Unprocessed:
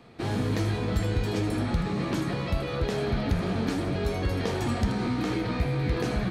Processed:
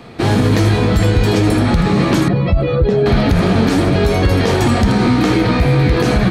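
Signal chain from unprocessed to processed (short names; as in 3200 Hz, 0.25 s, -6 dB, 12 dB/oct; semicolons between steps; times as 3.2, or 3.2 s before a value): 2.28–3.06 spectral contrast raised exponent 1.6; maximiser +18.5 dB; gain -3 dB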